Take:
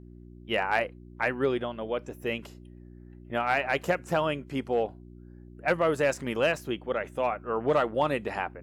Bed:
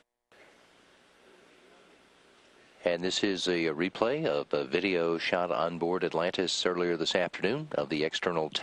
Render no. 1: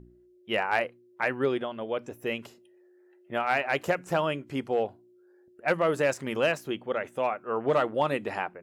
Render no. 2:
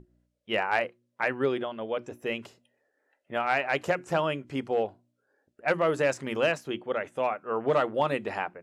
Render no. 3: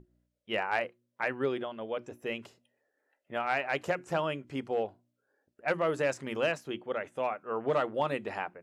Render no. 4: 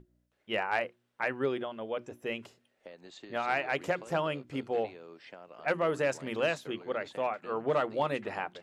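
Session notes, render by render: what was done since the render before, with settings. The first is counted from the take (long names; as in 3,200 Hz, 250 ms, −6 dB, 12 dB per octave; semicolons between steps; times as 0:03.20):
hum removal 60 Hz, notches 5
low-pass filter 9,400 Hz 12 dB per octave; mains-hum notches 60/120/180/240/300/360 Hz
level −4 dB
mix in bed −21 dB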